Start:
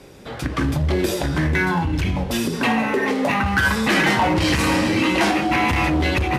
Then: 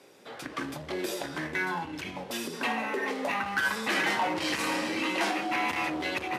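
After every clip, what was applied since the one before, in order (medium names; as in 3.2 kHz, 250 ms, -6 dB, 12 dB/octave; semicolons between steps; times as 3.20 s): Bessel high-pass 380 Hz, order 2; trim -8.5 dB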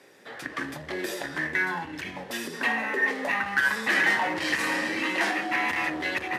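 peaking EQ 1.8 kHz +12 dB 0.28 oct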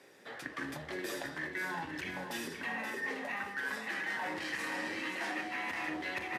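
reverse; compression, threshold -31 dBFS, peak gain reduction 12 dB; reverse; feedback delay 527 ms, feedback 33%, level -8 dB; trim -4.5 dB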